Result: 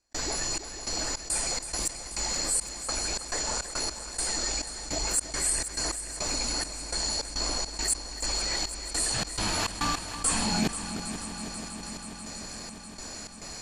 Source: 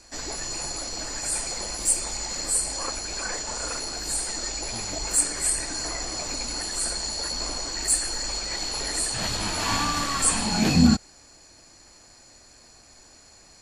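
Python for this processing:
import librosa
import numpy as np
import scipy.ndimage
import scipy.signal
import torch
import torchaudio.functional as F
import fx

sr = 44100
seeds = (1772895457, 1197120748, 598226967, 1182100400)

p1 = fx.step_gate(x, sr, bpm=104, pattern='.xxx..xx.xx.x.', floor_db=-60.0, edge_ms=4.5)
p2 = p1 + fx.echo_heads(p1, sr, ms=162, heads='second and third', feedback_pct=63, wet_db=-20.5, dry=0)
p3 = fx.env_flatten(p2, sr, amount_pct=50)
y = p3 * librosa.db_to_amplitude(-5.5)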